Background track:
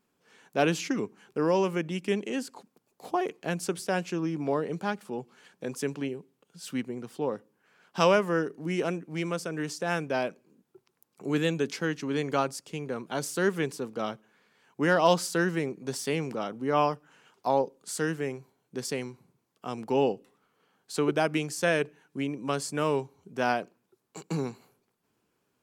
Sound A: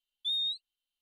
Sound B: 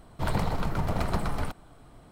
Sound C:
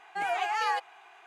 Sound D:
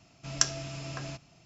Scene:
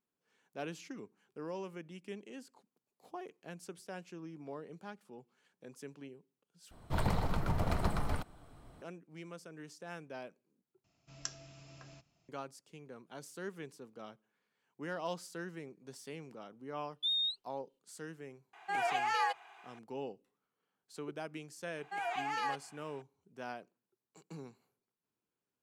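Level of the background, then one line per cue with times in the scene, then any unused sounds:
background track -17 dB
6.71 replace with B -5 dB + bell 81 Hz +2 dB
10.84 replace with D -16 dB
16.78 add A -0.5 dB + high shelf 9200 Hz -9.5 dB
18.53 add C -3.5 dB
21.76 add C -7.5 dB

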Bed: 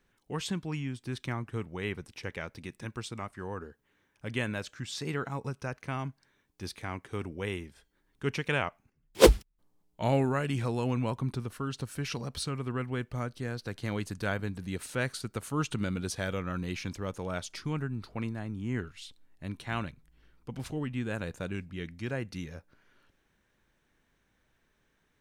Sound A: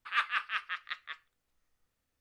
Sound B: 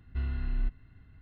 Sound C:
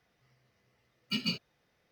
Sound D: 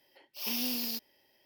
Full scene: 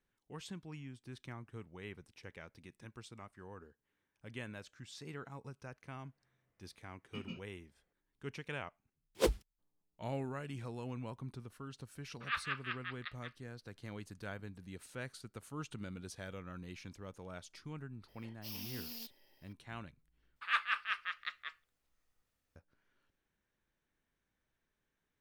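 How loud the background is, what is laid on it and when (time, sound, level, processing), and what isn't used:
bed -13 dB
6.02 add C -10 dB + running mean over 10 samples
12.15 add A -7 dB, fades 0.10 s + downsampling 11025 Hz
18.08 add D -2.5 dB + compressor, threshold -40 dBFS
20.36 replace with A -2.5 dB
not used: B

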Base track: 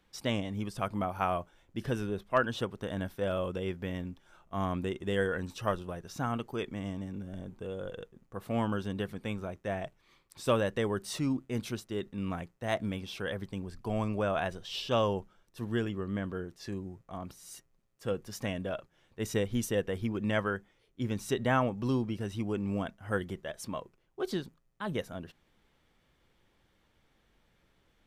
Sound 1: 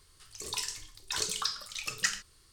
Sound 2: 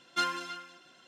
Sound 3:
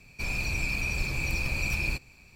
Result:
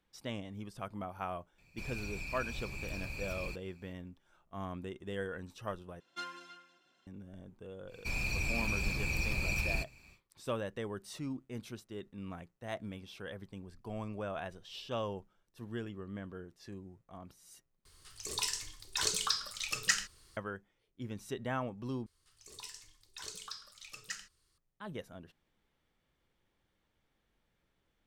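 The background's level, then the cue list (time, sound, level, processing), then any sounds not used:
base track -9 dB
1.58 add 3 -12.5 dB
6 replace with 2 -12.5 dB + high shelf 7700 Hz -3.5 dB
7.86 add 3 -4.5 dB, fades 0.10 s
17.85 replace with 1
22.06 replace with 1 -13 dB

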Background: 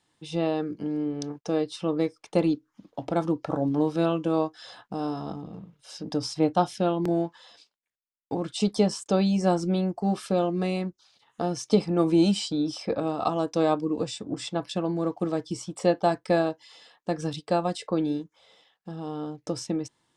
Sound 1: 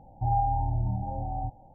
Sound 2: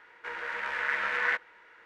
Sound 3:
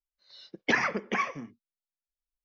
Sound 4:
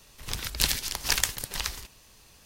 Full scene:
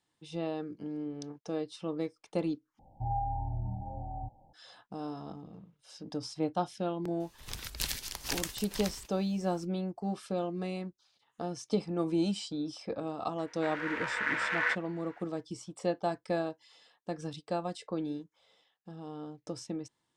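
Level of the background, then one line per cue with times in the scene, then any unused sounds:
background -9 dB
2.79 replace with 1 -7.5 dB
7.2 add 4 -8 dB + limiter -6 dBFS
13.38 add 2 -2 dB
not used: 3

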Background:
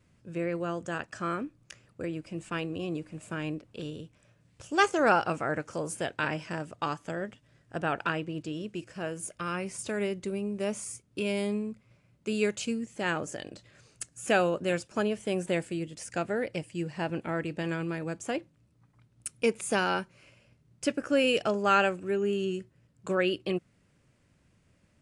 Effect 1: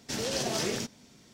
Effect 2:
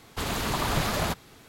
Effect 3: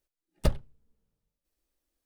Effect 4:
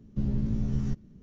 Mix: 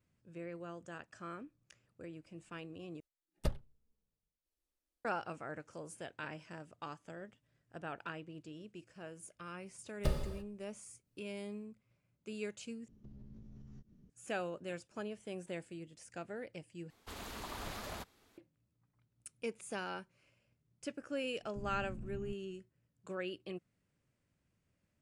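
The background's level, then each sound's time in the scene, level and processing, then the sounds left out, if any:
background -14 dB
3 replace with 3 -9.5 dB + downsampling 32000 Hz
9.6 add 3 -9 dB + non-linear reverb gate 0.37 s falling, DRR 0 dB
12.88 replace with 4 -11 dB + compressor 12:1, threshold -38 dBFS
16.9 replace with 2 -16.5 dB + bell 140 Hz -15 dB 0.33 oct
21.39 add 4 -17.5 dB + LPF 1400 Hz
not used: 1

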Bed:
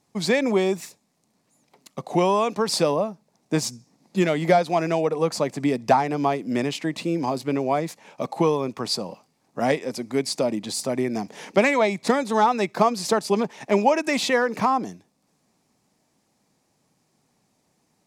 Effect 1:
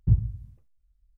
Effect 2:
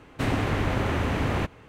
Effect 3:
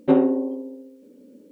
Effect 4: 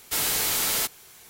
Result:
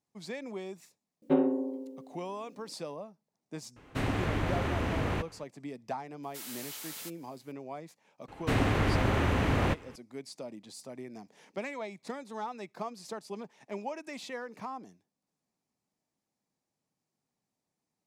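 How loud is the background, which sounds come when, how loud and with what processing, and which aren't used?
bed -19 dB
1.22 add 3 -8.5 dB
3.76 add 2 -5.5 dB
6.23 add 4 -18 dB + HPF 550 Hz 6 dB/oct
8.28 add 2 -1.5 dB
not used: 1

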